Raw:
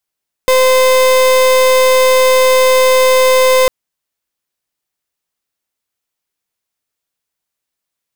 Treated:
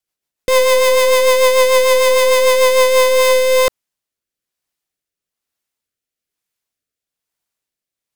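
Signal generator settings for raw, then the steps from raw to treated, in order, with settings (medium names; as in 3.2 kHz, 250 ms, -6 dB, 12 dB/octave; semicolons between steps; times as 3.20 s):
pulse 516 Hz, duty 36% -9 dBFS 3.20 s
rotary cabinet horn 6.7 Hz, later 1.1 Hz, at 2.64 s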